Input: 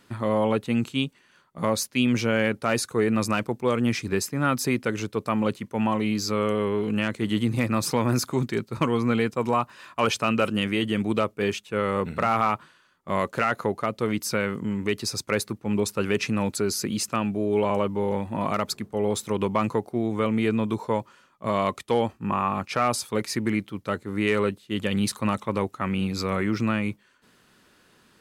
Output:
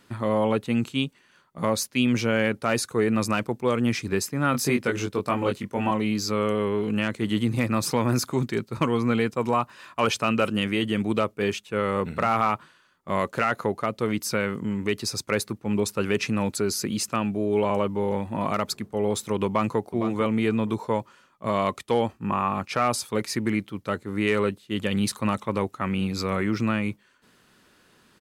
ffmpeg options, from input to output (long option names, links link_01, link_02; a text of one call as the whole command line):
ffmpeg -i in.wav -filter_complex "[0:a]asettb=1/sr,asplit=3[link_01][link_02][link_03];[link_01]atrim=end=4.524[link_04];[link_02]atrim=start=4.52:end=5.91,asetpts=PTS-STARTPTS,afade=type=in:duration=0.004:curve=qsin,afade=type=out:start_time=1.386:duration=0.004:curve=qsin,asplit=2[link_05][link_06];[link_06]adelay=21,volume=-3dB[link_07];[link_05][link_07]amix=inputs=2:normalize=0,atrim=end_sample=61299[link_08];[link_03]atrim=start=5.906[link_09];[link_04][link_08]acrossfade=duration=0.004:curve1=hsin:curve2=qsin[link_10];[link_10][link_09]acrossfade=duration=0.004:curve1=qsin:curve2=hsin,asplit=2[link_11][link_12];[link_12]afade=type=in:start_time=19.46:duration=0.01,afade=type=out:start_time=19.87:duration=0.01,aecho=0:1:460|920:0.334965|0.0502448[link_13];[link_11][link_13]amix=inputs=2:normalize=0" out.wav